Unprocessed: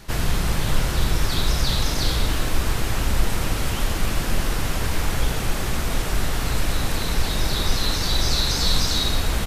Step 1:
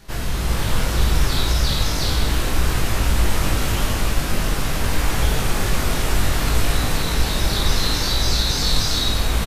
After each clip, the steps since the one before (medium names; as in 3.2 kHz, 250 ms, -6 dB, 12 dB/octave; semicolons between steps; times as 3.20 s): on a send: reverse bouncing-ball echo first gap 20 ms, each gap 1.6×, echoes 5; on the sum: level rider; trim -4.5 dB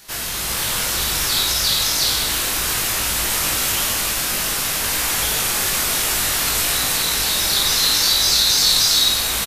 tilt EQ +3.5 dB/octave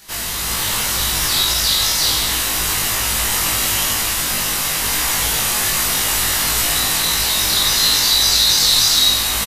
doubling 19 ms -2.5 dB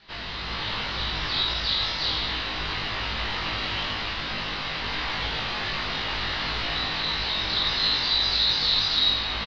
steep low-pass 4.5 kHz 48 dB/octave; trim -6.5 dB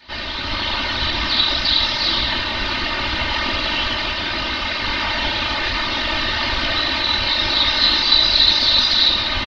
whisper effect; comb 3.3 ms, depth 88%; trim +5.5 dB